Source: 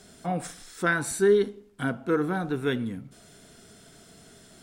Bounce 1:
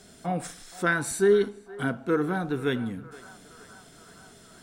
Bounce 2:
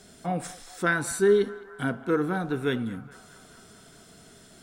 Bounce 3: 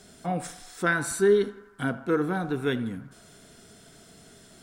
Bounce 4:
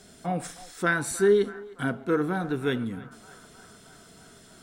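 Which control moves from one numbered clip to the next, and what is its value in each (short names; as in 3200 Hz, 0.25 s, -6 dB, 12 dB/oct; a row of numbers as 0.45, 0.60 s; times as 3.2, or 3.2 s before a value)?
narrowing echo, time: 471, 210, 82, 309 ms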